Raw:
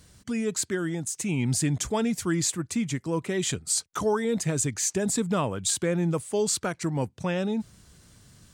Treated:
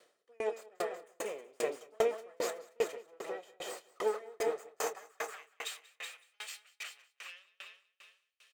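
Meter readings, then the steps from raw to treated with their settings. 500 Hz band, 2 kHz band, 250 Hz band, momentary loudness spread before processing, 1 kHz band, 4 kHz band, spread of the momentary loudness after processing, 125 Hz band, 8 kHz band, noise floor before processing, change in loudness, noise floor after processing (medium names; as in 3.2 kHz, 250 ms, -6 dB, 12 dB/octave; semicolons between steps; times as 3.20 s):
-6.5 dB, -8.0 dB, -26.0 dB, 5 LU, -8.0 dB, -12.0 dB, 14 LU, under -35 dB, -19.5 dB, -60 dBFS, -12.0 dB, -81 dBFS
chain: comb filter that takes the minimum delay 1.6 ms; high-pass 92 Hz; tone controls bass -12 dB, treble -11 dB; high-pass sweep 430 Hz -> 2.6 kHz, 4.50–5.53 s; doubling 28 ms -11 dB; feedback delay 187 ms, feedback 60%, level -4 dB; sawtooth tremolo in dB decaying 2.5 Hz, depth 39 dB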